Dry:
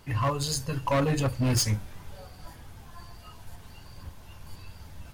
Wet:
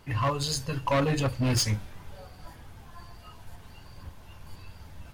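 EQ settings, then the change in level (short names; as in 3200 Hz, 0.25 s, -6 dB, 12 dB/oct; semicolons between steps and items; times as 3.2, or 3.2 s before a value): dynamic EQ 4000 Hz, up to +4 dB, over -45 dBFS, Q 0.75; tone controls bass -1 dB, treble -4 dB; 0.0 dB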